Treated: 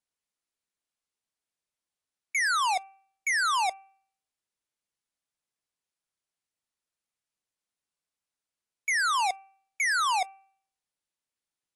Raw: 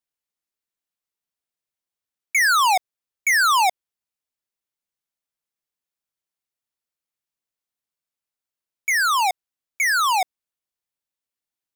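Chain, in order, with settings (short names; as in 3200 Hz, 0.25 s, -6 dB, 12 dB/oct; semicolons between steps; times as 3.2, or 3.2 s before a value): limiter -25 dBFS, peak gain reduction 8.5 dB; de-hum 388.5 Hz, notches 7; AAC 64 kbps 24000 Hz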